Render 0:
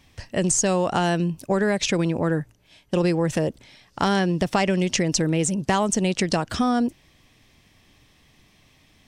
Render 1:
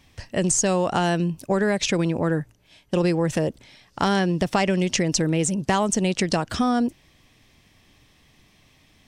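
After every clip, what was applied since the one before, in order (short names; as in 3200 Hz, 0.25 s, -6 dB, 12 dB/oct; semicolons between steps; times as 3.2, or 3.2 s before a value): nothing audible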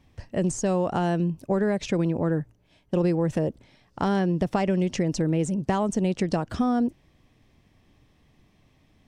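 tilt shelf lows +6 dB, about 1400 Hz; gain -7 dB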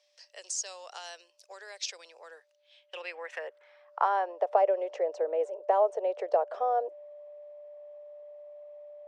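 whine 590 Hz -51 dBFS; band-pass sweep 5100 Hz -> 610 Hz, 2.3–4.61; steep high-pass 440 Hz 48 dB/oct; gain +6.5 dB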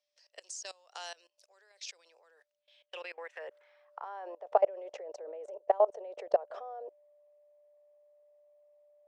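level quantiser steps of 22 dB; gain +1.5 dB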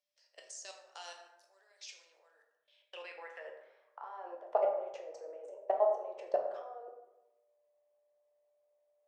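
plate-style reverb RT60 0.95 s, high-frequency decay 0.5×, DRR 1 dB; gain -6 dB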